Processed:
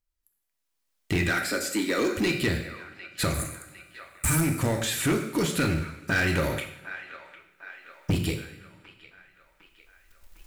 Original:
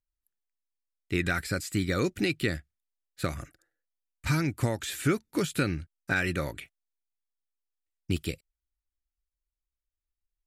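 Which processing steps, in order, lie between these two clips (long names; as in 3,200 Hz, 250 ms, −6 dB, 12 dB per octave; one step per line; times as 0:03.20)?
camcorder AGC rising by 13 dB per second
0:01.29–0:02.12: Butterworth high-pass 220 Hz 48 dB per octave
in parallel at −10 dB: log-companded quantiser 4 bits
0:03.34–0:04.41: on the sum: high shelf with overshoot 6,500 Hz +11.5 dB, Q 3
coupled-rooms reverb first 0.65 s, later 2 s, from −19 dB, DRR 4 dB
0:06.15–0:06.59: transient designer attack +9 dB, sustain +5 dB
delay with a band-pass on its return 754 ms, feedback 52%, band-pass 1,500 Hz, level −15.5 dB
soft clipping −20.5 dBFS, distortion −12 dB
level +2 dB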